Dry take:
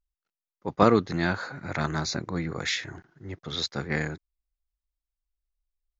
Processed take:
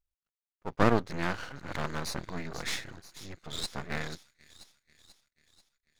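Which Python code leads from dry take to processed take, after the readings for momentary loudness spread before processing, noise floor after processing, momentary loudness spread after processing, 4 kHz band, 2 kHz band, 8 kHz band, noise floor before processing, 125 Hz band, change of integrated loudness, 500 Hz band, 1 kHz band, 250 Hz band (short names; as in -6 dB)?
20 LU, under -85 dBFS, 20 LU, -6.0 dB, -5.0 dB, n/a, under -85 dBFS, -5.5 dB, -6.0 dB, -6.0 dB, -5.0 dB, -6.0 dB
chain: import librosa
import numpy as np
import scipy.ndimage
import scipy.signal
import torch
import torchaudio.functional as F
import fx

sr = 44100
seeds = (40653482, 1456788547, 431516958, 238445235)

y = fx.echo_wet_highpass(x, sr, ms=487, feedback_pct=55, hz=4600.0, wet_db=-8.5)
y = np.maximum(y, 0.0)
y = F.gain(torch.from_numpy(y), -1.5).numpy()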